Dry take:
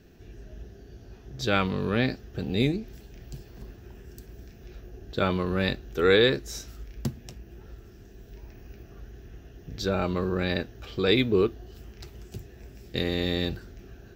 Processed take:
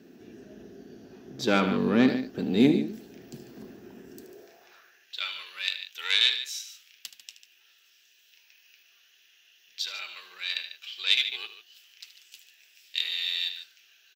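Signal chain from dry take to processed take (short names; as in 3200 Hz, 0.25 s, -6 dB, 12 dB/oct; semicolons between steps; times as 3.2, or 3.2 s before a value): loudspeakers at several distances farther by 26 m -12 dB, 50 m -12 dB; added harmonics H 4 -18 dB, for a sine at -6.5 dBFS; high-pass sweep 240 Hz -> 2900 Hz, 4.13–5.17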